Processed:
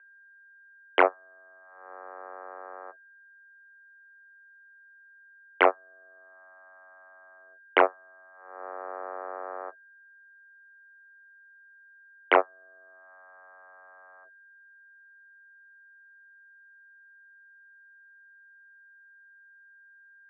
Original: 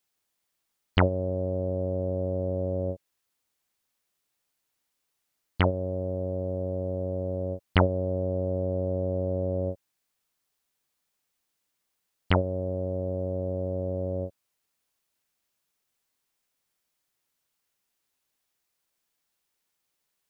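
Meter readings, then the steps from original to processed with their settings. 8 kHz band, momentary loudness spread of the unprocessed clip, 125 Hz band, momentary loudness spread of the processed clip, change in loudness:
can't be measured, 6 LU, below −40 dB, 22 LU, +1.0 dB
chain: downward expander −20 dBFS
automatic gain control gain up to 14.5 dB
harmonic generator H 2 −17 dB, 5 −24 dB, 7 −14 dB, 8 −34 dB, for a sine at −0.5 dBFS
steady tone 1,500 Hz −53 dBFS
single-sideband voice off tune +99 Hz 290–2,500 Hz

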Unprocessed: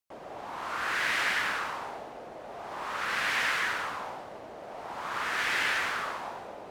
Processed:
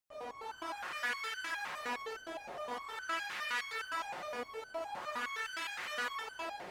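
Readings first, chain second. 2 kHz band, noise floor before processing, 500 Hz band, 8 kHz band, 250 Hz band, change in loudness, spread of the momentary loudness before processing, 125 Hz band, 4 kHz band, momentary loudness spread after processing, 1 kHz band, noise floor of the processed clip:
−9.0 dB, −45 dBFS, −4.0 dB, −8.0 dB, −6.0 dB, −9.0 dB, 16 LU, −14.0 dB, −8.0 dB, 7 LU, −7.0 dB, −53 dBFS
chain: downward compressor, threshold −37 dBFS, peak gain reduction 12 dB
notch comb filter 180 Hz
on a send: delay with a high-pass on its return 228 ms, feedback 61%, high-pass 1,500 Hz, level −3.5 dB
on the sum: step-sequenced resonator 9.7 Hz 180–1,500 Hz
level +17 dB

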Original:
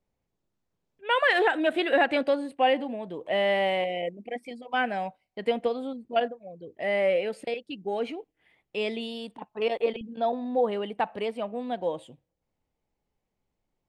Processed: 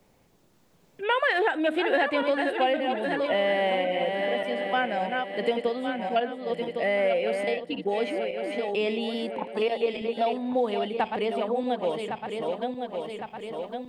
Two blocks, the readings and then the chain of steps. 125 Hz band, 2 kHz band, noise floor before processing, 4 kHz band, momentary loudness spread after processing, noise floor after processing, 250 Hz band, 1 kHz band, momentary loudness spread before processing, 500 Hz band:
+3.0 dB, +0.5 dB, −82 dBFS, +1.0 dB, 8 LU, −62 dBFS, +2.5 dB, +1.5 dB, 14 LU, +2.0 dB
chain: feedback delay that plays each chunk backwards 554 ms, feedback 56%, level −7 dB
multiband upward and downward compressor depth 70%

